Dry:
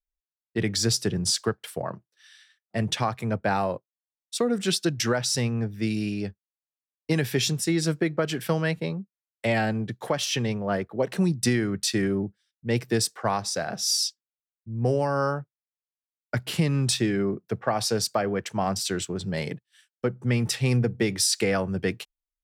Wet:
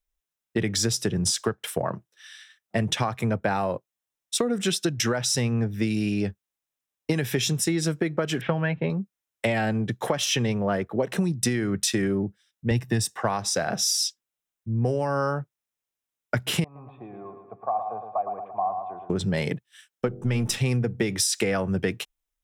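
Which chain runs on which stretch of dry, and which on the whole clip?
8.41–8.9 LPF 2900 Hz 24 dB/oct + comb 7.5 ms, depth 45%
12.71–13.22 low shelf 150 Hz +8.5 dB + comb 1.1 ms, depth 48% + mismatched tape noise reduction decoder only
16.64–19.1 vocal tract filter a + feedback echo 0.113 s, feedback 54%, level -7.5 dB
20.07–20.58 half-wave gain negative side -3 dB + bell 1900 Hz -4.5 dB 0.33 oct + de-hum 49.08 Hz, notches 16
whole clip: notch 4500 Hz, Q 6.3; compressor, threshold -29 dBFS; gain +7.5 dB

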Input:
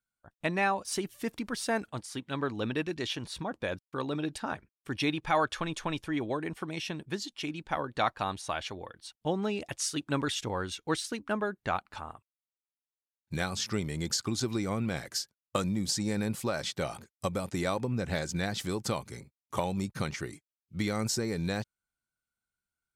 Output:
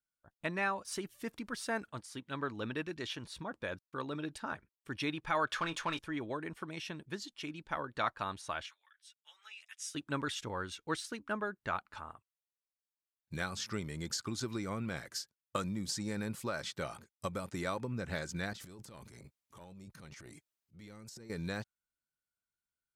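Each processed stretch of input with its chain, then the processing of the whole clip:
5.47–5.99 overdrive pedal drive 13 dB, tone 5800 Hz, clips at -19.5 dBFS + doubler 24 ms -12 dB
8.66–9.95 HPF 1500 Hz 24 dB/oct + notch 4400 Hz, Q 7 + ensemble effect
18.53–21.3 compressor 10:1, threshold -41 dBFS + transient shaper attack -8 dB, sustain +11 dB
whole clip: notch 760 Hz, Q 12; dynamic EQ 1400 Hz, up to +5 dB, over -49 dBFS, Q 1.5; gain -7 dB

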